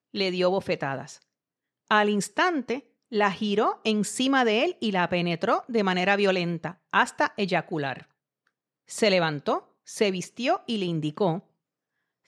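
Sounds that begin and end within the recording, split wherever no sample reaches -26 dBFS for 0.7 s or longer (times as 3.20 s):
1.91–7.93 s
8.96–11.36 s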